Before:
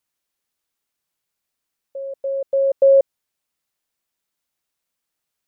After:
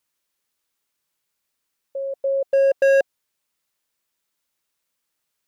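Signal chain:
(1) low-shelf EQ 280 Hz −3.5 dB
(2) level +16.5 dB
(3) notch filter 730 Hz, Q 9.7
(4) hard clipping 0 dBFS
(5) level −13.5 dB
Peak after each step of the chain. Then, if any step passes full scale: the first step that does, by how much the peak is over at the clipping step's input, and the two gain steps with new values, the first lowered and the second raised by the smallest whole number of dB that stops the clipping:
−8.5, +8.0, +8.0, 0.0, −13.5 dBFS
step 2, 8.0 dB
step 2 +8.5 dB, step 5 −5.5 dB

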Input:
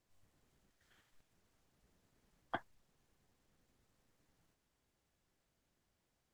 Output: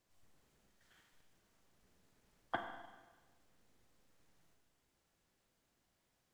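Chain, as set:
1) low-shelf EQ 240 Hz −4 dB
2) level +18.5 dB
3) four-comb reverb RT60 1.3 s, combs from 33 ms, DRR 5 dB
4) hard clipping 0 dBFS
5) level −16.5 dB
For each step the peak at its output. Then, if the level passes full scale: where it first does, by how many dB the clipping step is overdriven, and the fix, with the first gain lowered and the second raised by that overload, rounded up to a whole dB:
−23.0, −4.5, −4.5, −4.5, −21.0 dBFS
no step passes full scale

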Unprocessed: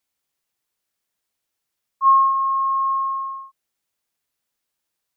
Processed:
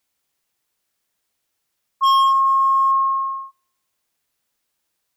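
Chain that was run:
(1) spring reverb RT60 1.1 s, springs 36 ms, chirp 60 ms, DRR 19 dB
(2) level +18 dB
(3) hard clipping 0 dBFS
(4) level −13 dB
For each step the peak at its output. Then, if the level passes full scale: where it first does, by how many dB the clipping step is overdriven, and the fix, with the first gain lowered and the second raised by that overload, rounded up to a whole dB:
−8.5, +9.5, 0.0, −13.0 dBFS
step 2, 9.5 dB
step 2 +8 dB, step 4 −3 dB

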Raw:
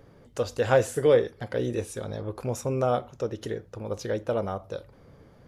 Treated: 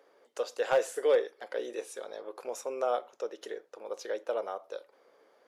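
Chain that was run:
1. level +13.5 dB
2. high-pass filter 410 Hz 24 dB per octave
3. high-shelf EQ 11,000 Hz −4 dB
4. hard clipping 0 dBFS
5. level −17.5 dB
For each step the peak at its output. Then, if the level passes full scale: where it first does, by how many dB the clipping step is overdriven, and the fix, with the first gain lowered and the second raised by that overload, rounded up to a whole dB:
+6.5, +6.0, +6.0, 0.0, −17.5 dBFS
step 1, 6.0 dB
step 1 +7.5 dB, step 5 −11.5 dB

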